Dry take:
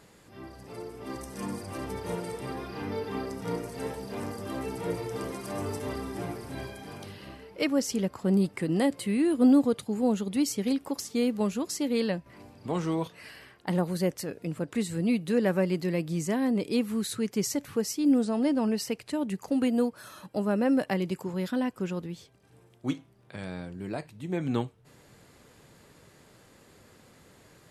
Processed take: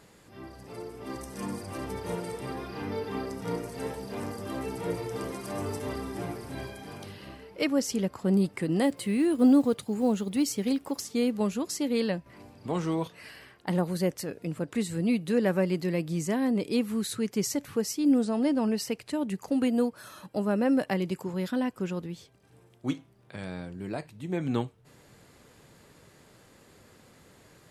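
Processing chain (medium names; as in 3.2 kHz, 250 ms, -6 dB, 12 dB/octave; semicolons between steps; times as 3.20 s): 8.83–11.09 s: block-companded coder 7-bit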